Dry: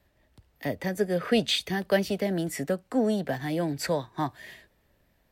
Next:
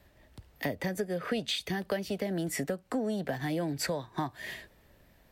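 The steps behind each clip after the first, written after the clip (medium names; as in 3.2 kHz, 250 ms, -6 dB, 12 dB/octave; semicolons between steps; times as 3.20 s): compression 6:1, threshold -36 dBFS, peak gain reduction 17 dB; trim +6 dB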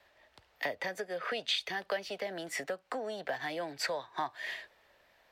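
three-band isolator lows -21 dB, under 500 Hz, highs -13 dB, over 5.8 kHz; trim +2 dB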